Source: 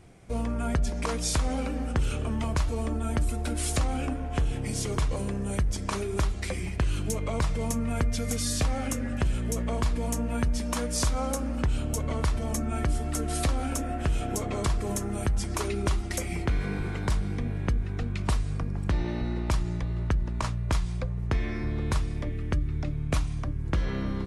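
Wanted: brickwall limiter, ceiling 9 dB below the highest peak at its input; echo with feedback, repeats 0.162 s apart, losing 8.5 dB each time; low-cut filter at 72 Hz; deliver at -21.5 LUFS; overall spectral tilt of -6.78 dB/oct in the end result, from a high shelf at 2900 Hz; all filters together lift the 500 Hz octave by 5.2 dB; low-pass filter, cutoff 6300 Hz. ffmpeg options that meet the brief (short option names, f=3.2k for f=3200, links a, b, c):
-af "highpass=72,lowpass=6.3k,equalizer=f=500:t=o:g=6.5,highshelf=f=2.9k:g=-4,alimiter=limit=-21dB:level=0:latency=1,aecho=1:1:162|324|486|648:0.376|0.143|0.0543|0.0206,volume=9.5dB"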